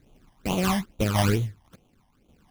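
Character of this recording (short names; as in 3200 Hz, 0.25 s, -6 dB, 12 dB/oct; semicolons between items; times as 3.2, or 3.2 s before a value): random-step tremolo; aliases and images of a low sample rate 1900 Hz, jitter 20%; phasing stages 12, 2.3 Hz, lowest notch 420–1700 Hz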